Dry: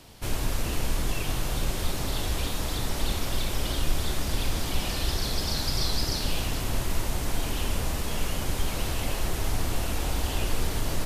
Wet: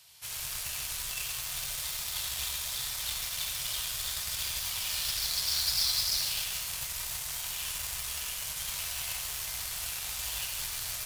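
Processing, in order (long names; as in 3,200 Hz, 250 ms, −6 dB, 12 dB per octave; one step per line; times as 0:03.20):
high-pass filter 74 Hz 12 dB per octave
spectral tilt +1.5 dB per octave
tuned comb filter 140 Hz, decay 0.22 s, harmonics odd, mix 60%
convolution reverb RT60 0.60 s, pre-delay 70 ms, DRR 2 dB
in parallel at −5 dB: bit reduction 5 bits
on the sum: guitar amp tone stack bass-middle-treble 10-0-10
level +1.5 dB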